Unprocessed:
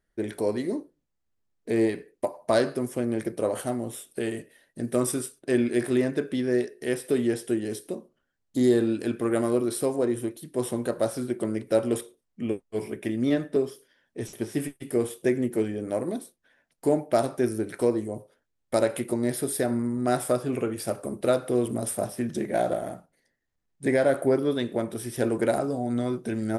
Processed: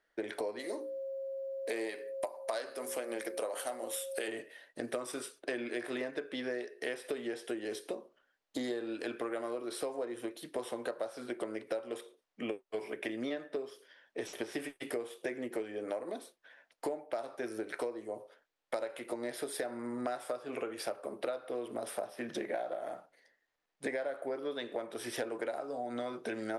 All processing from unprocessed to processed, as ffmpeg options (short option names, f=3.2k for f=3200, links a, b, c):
-filter_complex "[0:a]asettb=1/sr,asplit=3[a][b][c];[a]atrim=end=0.594[d];[b]atrim=start=0.59:end=4.28,asetpts=PTS-STARTPTS,afade=t=in:d=0.004:c=qsin,afade=t=out:st=3.686:d=0.004:c=qsin,aemphasis=mode=production:type=bsi,bandreject=f=60:t=h:w=6,bandreject=f=120:t=h:w=6,bandreject=f=180:t=h:w=6,bandreject=f=240:t=h:w=6,bandreject=f=300:t=h:w=6,bandreject=f=360:t=h:w=6,bandreject=f=420:t=h:w=6,aeval=exprs='val(0)+0.00891*sin(2*PI*540*n/s)':c=same[e];[c]atrim=start=4.276[f];[d][e]acrossfade=d=0.004:c1=hsin:c2=qsin[g];[g][f]acrossfade=d=0.004:c1=qsin:c2=hsin,asettb=1/sr,asplit=3[h][i][j];[h]atrim=end=20.854[k];[i]atrim=start=20.85:end=22.81,asetpts=PTS-STARTPTS,afade=t=in:d=0.004:c=qsin,afade=t=out:st=1.956:d=0.004:c=qsin,highpass=51,equalizer=f=7.4k:t=o:w=0.87:g=-5[l];[j]atrim=start=22.806[m];[k][l]acrossfade=d=0.004:c1=hsin:c2=qsin[n];[n][m]acrossfade=d=0.004:c1=qsin:c2=hsin,acrossover=split=370 5200:gain=0.0708 1 0.224[o][p][q];[o][p][q]amix=inputs=3:normalize=0,bandreject=f=380:w=12,acompressor=threshold=-40dB:ratio=10,volume=6dB"